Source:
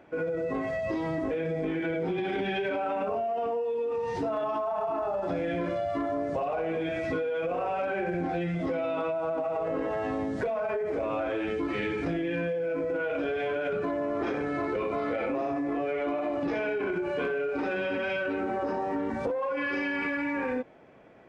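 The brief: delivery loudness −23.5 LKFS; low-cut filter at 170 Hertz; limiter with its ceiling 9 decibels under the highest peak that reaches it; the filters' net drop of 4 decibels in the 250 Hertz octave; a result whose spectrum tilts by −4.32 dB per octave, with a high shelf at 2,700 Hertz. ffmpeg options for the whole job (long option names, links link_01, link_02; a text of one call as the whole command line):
ffmpeg -i in.wav -af "highpass=170,equalizer=frequency=250:width_type=o:gain=-4.5,highshelf=frequency=2700:gain=-4,volume=12dB,alimiter=limit=-16.5dB:level=0:latency=1" out.wav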